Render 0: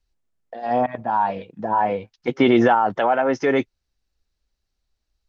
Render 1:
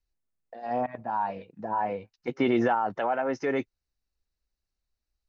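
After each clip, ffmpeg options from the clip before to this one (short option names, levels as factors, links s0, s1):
-af "bandreject=f=3300:w=7.7,volume=0.376"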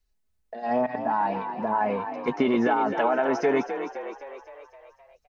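-filter_complex "[0:a]aecho=1:1:4.7:0.52,acompressor=threshold=0.0631:ratio=6,asplit=2[s0][s1];[s1]asplit=7[s2][s3][s4][s5][s6][s7][s8];[s2]adelay=259,afreqshift=42,volume=0.355[s9];[s3]adelay=518,afreqshift=84,volume=0.207[s10];[s4]adelay=777,afreqshift=126,volume=0.119[s11];[s5]adelay=1036,afreqshift=168,volume=0.0692[s12];[s6]adelay=1295,afreqshift=210,volume=0.0403[s13];[s7]adelay=1554,afreqshift=252,volume=0.0232[s14];[s8]adelay=1813,afreqshift=294,volume=0.0135[s15];[s9][s10][s11][s12][s13][s14][s15]amix=inputs=7:normalize=0[s16];[s0][s16]amix=inputs=2:normalize=0,volume=1.78"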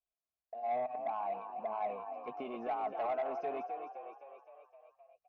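-filter_complex "[0:a]asplit=3[s0][s1][s2];[s0]bandpass=f=730:t=q:w=8,volume=1[s3];[s1]bandpass=f=1090:t=q:w=8,volume=0.501[s4];[s2]bandpass=f=2440:t=q:w=8,volume=0.355[s5];[s3][s4][s5]amix=inputs=3:normalize=0,lowshelf=f=190:g=10.5,asoftclip=type=tanh:threshold=0.0562,volume=0.708"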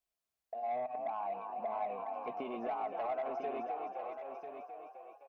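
-af "acompressor=threshold=0.00708:ratio=2,aecho=1:1:997:0.376,volume=1.58"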